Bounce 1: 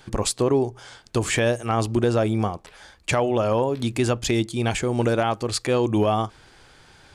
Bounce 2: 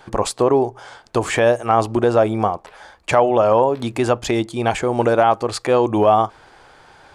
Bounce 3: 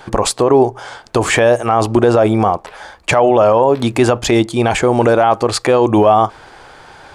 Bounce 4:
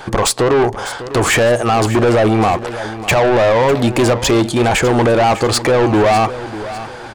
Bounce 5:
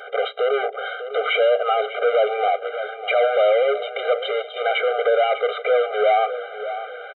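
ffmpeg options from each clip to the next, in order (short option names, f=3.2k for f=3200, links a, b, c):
-af "equalizer=f=810:w=0.56:g=12.5,volume=-2.5dB"
-af "alimiter=limit=-10dB:level=0:latency=1:release=29,volume=8dB"
-filter_complex "[0:a]asplit=2[a][b];[b]acontrast=88,volume=2dB[c];[a][c]amix=inputs=2:normalize=0,asoftclip=type=tanh:threshold=-3dB,aecho=1:1:600|1200|1800:0.2|0.0698|0.0244,volume=-6dB"
-af "asoftclip=type=tanh:threshold=-10.5dB,aresample=8000,aresample=44100,afftfilt=real='re*eq(mod(floor(b*sr/1024/400),2),1)':imag='im*eq(mod(floor(b*sr/1024/400),2),1)':win_size=1024:overlap=0.75,volume=-1dB"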